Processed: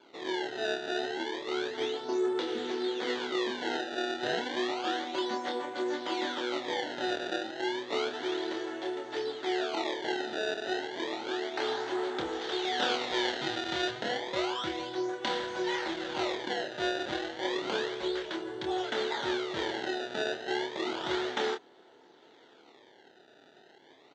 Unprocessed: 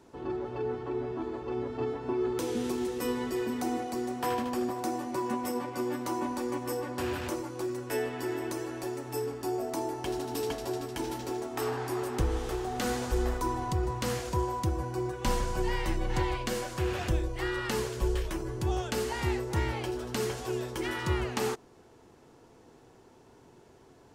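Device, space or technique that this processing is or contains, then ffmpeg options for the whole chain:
circuit-bent sampling toy: -filter_complex "[0:a]acrusher=samples=23:mix=1:aa=0.000001:lfo=1:lforange=36.8:lforate=0.31,lowpass=f=8.1k:w=0.5412,lowpass=f=8.1k:w=1.3066,highpass=480,equalizer=f=490:t=q:w=4:g=-4,equalizer=f=710:t=q:w=4:g=-3,equalizer=f=1.1k:t=q:w=4:g=-10,equalizer=f=2.5k:t=q:w=4:g=-8,equalizer=f=3.5k:t=q:w=4:g=5,equalizer=f=5.2k:t=q:w=4:g=-8,lowpass=f=5.3k:w=0.5412,lowpass=f=5.3k:w=1.3066,asplit=2[a][b];[b]adelay=27,volume=-5dB[c];[a][c]amix=inputs=2:normalize=0,asettb=1/sr,asplit=3[d][e][f];[d]atrim=end=12.414[g];[e]atrim=start=12.41:end=13.91,asetpts=PTS-STARTPTS,afade=t=in:d=0.004:c=qsin,afade=t=out:st=1.496:d=0.004:c=qsin,equalizer=f=4.3k:t=o:w=2.4:g=5[h];[f]atrim=start=13.906[i];[g][h]acrossfade=d=0.004:c1=hsin:c2=qsin[j];[j][i]acrossfade=d=0.004:c1=qsin:c2=hsin,volume=4.5dB"

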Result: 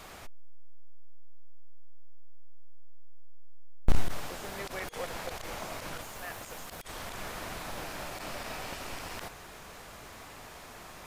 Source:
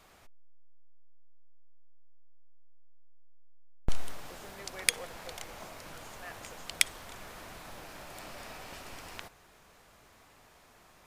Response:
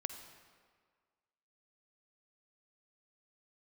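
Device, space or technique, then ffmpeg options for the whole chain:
de-esser from a sidechain: -filter_complex "[0:a]asettb=1/sr,asplit=3[a][b][c];[a]atrim=end=6.014[d];[b]atrim=start=6.01:end=6.81,asetpts=PTS-STARTPTS,afade=t=in:d=0.004:c=qsin,afade=t=out:st=0.796:d=0.004:c=qsin,highshelf=f=12k:g=10.5[e];[c]atrim=start=6.806[f];[d][e]acrossfade=d=0.004:c1=hsin:c2=qsin[g];[g][f]acrossfade=d=0.004:c1=qsin:c2=hsin,asplit=2[h][i];[i]highpass=6.3k,apad=whole_len=487887[j];[h][j]sidechaincompress=threshold=-58dB:ratio=10:attack=0.58:release=24,volume=12dB"

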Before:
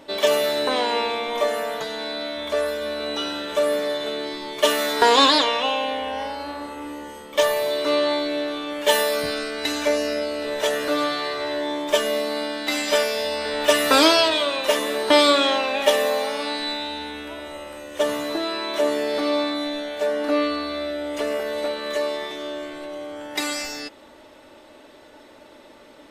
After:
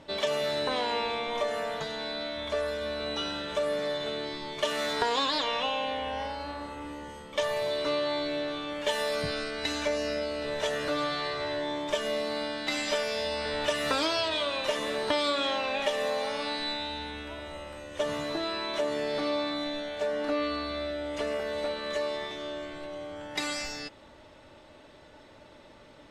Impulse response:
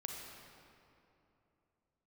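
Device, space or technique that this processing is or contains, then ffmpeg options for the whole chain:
jukebox: -af "lowpass=7.7k,lowshelf=f=200:t=q:w=1.5:g=8,acompressor=threshold=-20dB:ratio=5,volume=-5dB"

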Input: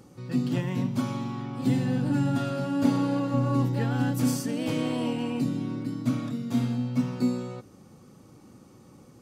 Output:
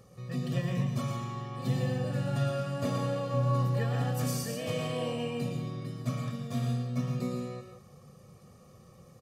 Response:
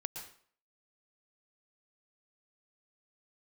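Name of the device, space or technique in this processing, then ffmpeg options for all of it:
microphone above a desk: -filter_complex "[0:a]aecho=1:1:1.7:0.85[a];[1:a]atrim=start_sample=2205[b];[a][b]afir=irnorm=-1:irlink=0,volume=-3dB"

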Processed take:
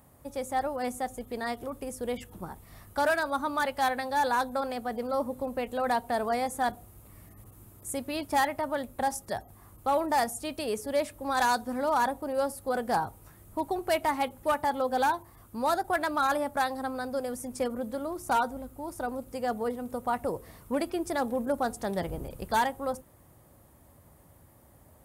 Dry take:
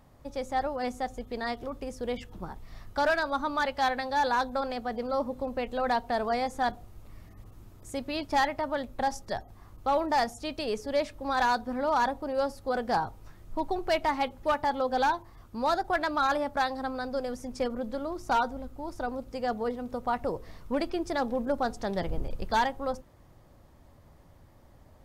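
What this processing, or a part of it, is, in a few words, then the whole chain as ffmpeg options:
budget condenser microphone: -filter_complex "[0:a]asettb=1/sr,asplit=3[a][b][c];[a]atrim=end=11.354[d];[b]atrim=start=11.35:end=11.89,asetpts=PTS-STARTPTS,afade=t=in:d=0.004:c=qsin,afade=t=out:st=0.536:d=0.004:c=qsin,equalizer=f=5.8k:w=0.91:g=6[e];[c]atrim=start=11.886[f];[d][e]acrossfade=d=0.004:c1=hsin:c2=qsin[g];[g][f]acrossfade=d=0.004:c1=qsin:c2=hsin,highpass=61,highshelf=f=7.3k:t=q:w=1.5:g=11.5"

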